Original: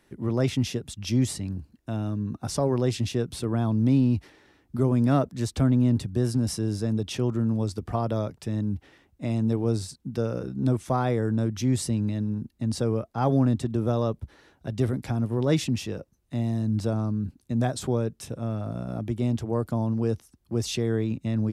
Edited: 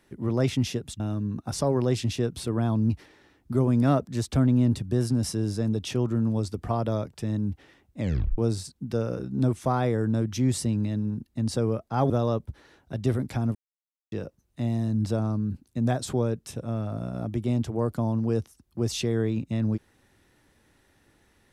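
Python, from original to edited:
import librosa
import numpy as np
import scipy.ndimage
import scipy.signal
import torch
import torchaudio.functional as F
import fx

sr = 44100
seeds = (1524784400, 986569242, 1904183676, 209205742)

y = fx.edit(x, sr, fx.cut(start_s=1.0, length_s=0.96),
    fx.cut(start_s=3.86, length_s=0.28),
    fx.tape_stop(start_s=9.24, length_s=0.38),
    fx.cut(start_s=13.34, length_s=0.5),
    fx.silence(start_s=15.29, length_s=0.57), tone=tone)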